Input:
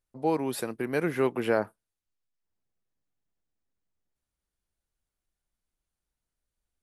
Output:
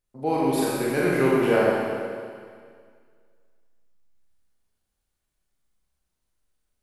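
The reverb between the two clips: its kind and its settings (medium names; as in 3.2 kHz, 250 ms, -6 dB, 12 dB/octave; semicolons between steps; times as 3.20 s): Schroeder reverb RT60 2 s, combs from 30 ms, DRR -6 dB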